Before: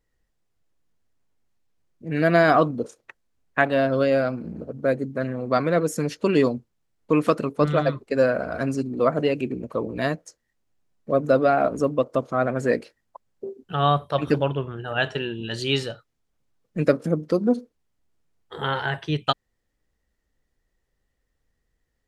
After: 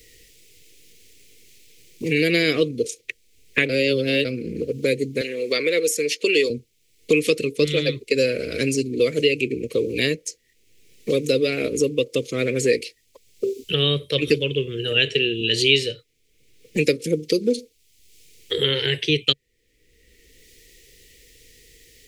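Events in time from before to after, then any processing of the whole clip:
3.69–4.25 reverse
5.21–6.5 HPF 460 Hz
whole clip: EQ curve 140 Hz 0 dB, 190 Hz -6 dB, 470 Hz +8 dB, 730 Hz -27 dB, 1500 Hz -13 dB, 2200 Hz +13 dB; three-band squash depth 70%

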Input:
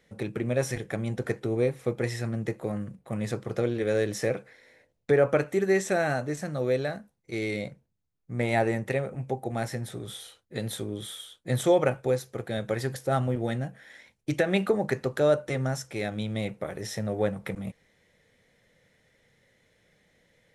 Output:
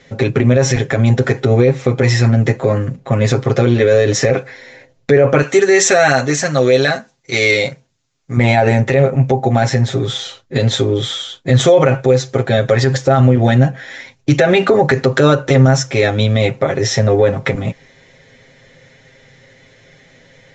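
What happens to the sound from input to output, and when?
5.42–8.37 tilt +2.5 dB/oct
whole clip: steep low-pass 7400 Hz 96 dB/oct; comb 7.5 ms, depth 83%; maximiser +18 dB; gain -1 dB

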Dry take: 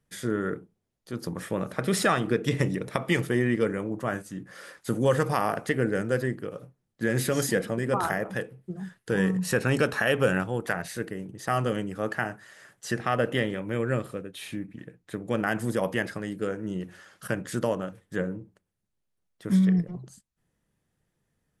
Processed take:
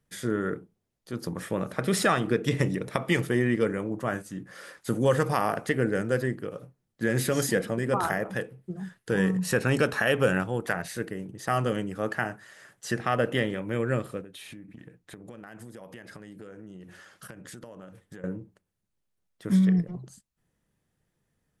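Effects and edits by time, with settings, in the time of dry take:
14.21–18.24 compressor 12:1, threshold -40 dBFS

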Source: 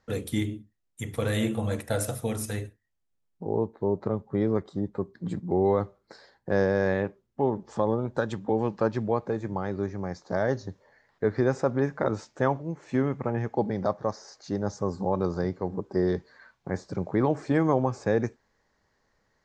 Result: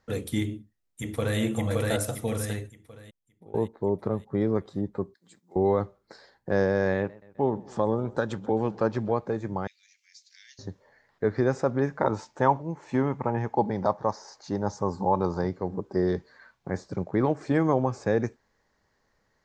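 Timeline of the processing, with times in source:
0.45–1.39 echo throw 0.57 s, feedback 45%, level -0.5 dB
2.29–3.54 fade out, to -20.5 dB
5.14–5.56 differentiator
6.96–9.16 warbling echo 0.129 s, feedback 62%, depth 103 cents, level -22 dB
9.67–10.59 steep high-pass 2300 Hz 48 dB/oct
12–15.48 bell 910 Hz +10 dB 0.39 oct
16.88–17.41 transient shaper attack 0 dB, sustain -5 dB

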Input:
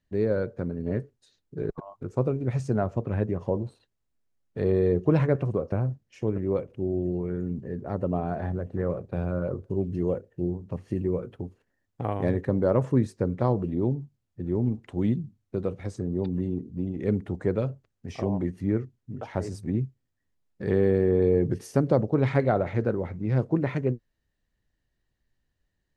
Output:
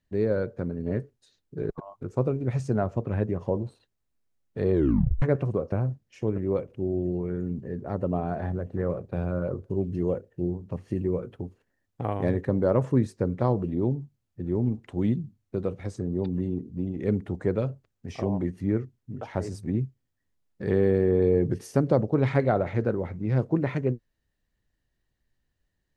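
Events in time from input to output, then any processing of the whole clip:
4.73 tape stop 0.49 s

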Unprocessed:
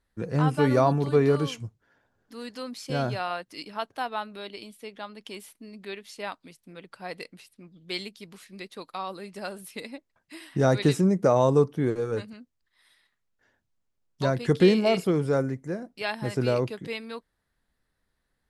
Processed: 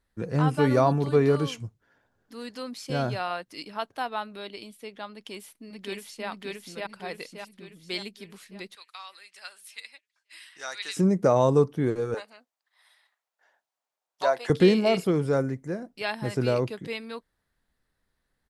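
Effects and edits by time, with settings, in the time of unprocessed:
5.12–6.28 echo throw 0.58 s, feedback 50%, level 0 dB
8.75–10.97 Butterworth band-pass 4400 Hz, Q 0.51
12.14–14.5 resonant high-pass 730 Hz, resonance Q 2.4

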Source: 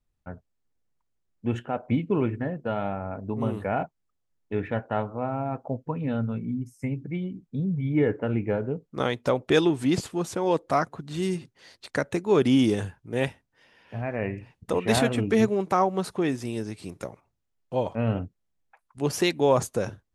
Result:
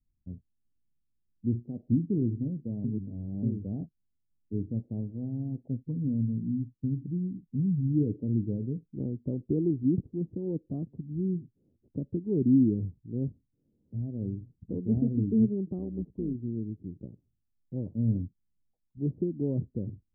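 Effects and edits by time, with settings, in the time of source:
2.84–3.43 reverse
15.78–16.35 AM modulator 110 Hz, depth 55%
whole clip: inverse Chebyshev low-pass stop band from 1800 Hz, stop band 80 dB

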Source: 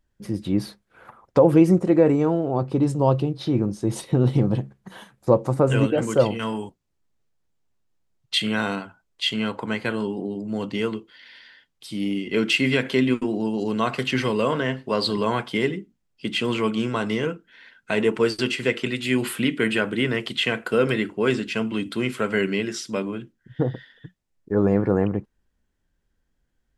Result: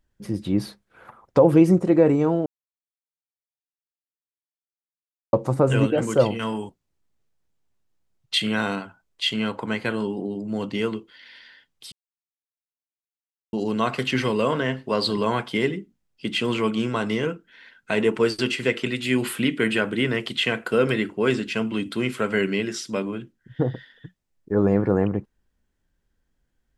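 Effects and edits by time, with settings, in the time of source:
2.46–5.33 mute
11.92–13.53 mute

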